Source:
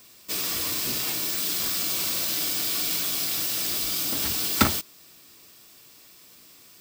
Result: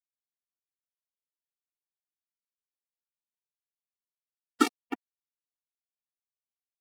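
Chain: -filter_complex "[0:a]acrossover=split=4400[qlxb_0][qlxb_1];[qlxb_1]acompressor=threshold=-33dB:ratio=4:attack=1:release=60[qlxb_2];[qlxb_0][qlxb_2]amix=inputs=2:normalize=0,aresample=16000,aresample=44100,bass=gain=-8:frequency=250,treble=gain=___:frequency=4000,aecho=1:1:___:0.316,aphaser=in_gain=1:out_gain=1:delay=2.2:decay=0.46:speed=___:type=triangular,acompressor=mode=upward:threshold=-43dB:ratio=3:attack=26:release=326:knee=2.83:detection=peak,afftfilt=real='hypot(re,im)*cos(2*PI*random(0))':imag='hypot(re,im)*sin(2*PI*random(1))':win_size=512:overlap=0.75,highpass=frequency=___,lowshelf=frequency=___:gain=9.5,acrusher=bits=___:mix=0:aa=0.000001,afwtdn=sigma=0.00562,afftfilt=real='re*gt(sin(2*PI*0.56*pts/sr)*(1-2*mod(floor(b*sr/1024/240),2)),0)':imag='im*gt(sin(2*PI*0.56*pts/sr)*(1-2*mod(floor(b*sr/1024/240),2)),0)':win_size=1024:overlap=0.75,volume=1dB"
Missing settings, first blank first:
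-11, 310, 0.62, 150, 450, 3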